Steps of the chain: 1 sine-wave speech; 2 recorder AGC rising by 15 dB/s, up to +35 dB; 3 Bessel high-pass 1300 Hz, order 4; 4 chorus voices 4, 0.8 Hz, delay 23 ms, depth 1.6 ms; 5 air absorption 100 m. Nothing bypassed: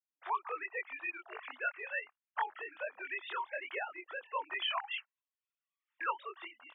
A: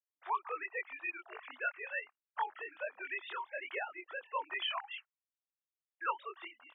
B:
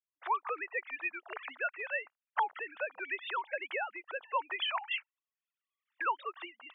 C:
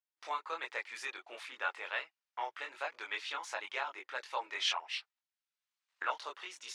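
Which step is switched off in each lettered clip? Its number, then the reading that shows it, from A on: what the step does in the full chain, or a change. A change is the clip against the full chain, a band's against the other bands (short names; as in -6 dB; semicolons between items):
2, momentary loudness spread change +2 LU; 4, loudness change +2.5 LU; 1, crest factor change +2.0 dB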